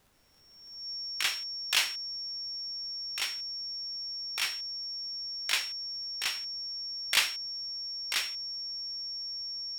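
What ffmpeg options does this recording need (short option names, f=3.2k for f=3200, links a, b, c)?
-af "adeclick=t=4,bandreject=f=5.5k:w=30,agate=range=-21dB:threshold=-30dB"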